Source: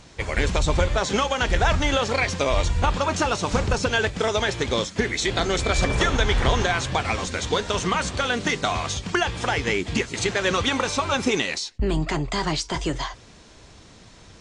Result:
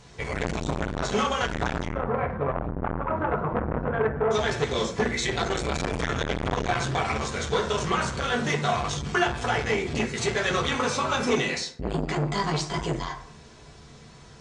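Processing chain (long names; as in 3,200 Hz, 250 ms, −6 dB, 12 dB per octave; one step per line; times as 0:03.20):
0:01.86–0:04.31: low-pass filter 1,500 Hz 24 dB per octave
convolution reverb RT60 0.60 s, pre-delay 3 ms, DRR −3 dB
saturating transformer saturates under 890 Hz
level −5 dB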